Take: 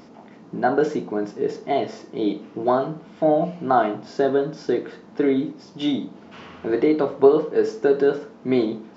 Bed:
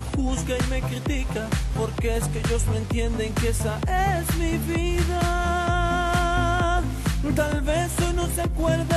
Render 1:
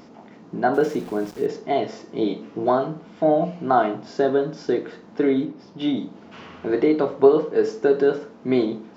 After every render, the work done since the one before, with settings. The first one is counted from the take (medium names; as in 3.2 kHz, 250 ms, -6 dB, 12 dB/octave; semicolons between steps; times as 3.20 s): 0.74–1.46 s: small samples zeroed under -39 dBFS; 2.06–2.70 s: doubling 18 ms -5.5 dB; 5.45–5.97 s: distance through air 140 m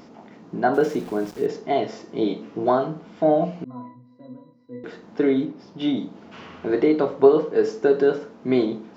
3.64–4.84 s: pitch-class resonator B, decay 0.41 s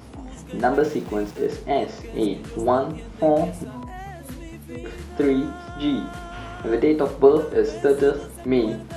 add bed -14.5 dB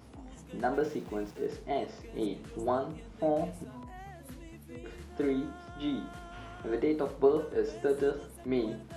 trim -10.5 dB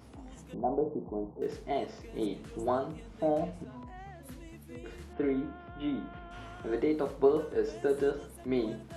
0.54–1.42 s: steep low-pass 1 kHz 48 dB/octave; 3.39–4.23 s: distance through air 78 m; 5.13–6.31 s: Chebyshev low-pass 2.8 kHz, order 3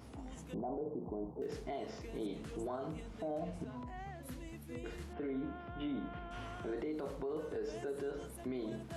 compression 4:1, threshold -32 dBFS, peak gain reduction 11.5 dB; peak limiter -32 dBFS, peak gain reduction 10.5 dB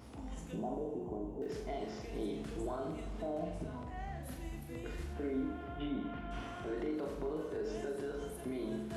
flutter echo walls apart 7.2 m, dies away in 0.4 s; plate-style reverb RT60 3.1 s, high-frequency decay 0.9×, DRR 9 dB